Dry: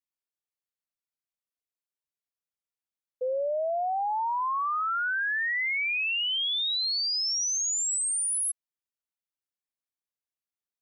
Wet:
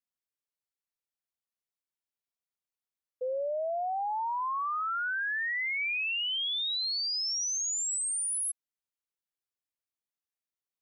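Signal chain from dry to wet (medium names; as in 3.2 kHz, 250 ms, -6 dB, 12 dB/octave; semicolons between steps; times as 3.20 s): 5.80–7.66 s: small resonant body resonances 610/1900 Hz, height 17 dB, ringing for 65 ms; trim -3.5 dB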